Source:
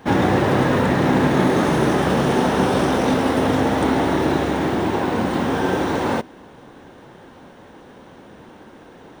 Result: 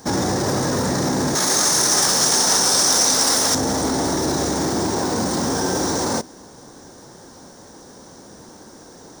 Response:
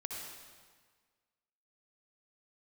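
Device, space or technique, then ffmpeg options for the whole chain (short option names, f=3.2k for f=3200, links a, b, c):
over-bright horn tweeter: -filter_complex "[0:a]highshelf=f=4k:t=q:w=3:g=12.5,alimiter=limit=-12.5dB:level=0:latency=1:release=11,asettb=1/sr,asplit=3[a][b][c];[a]atrim=end=1.354[d];[b]atrim=start=1.35:end=3.55,asetpts=PTS-STARTPTS,afade=t=in:d=0.004:c=qsin,afade=t=out:st=2.196:d=0.004:c=qsin,tiltshelf=f=700:g=-9[e];[c]atrim=start=3.546[f];[d][e]acrossfade=d=0.004:c1=hsin:c2=qsin[g];[g][f]acrossfade=d=0.004:c1=qsin:c2=hsin"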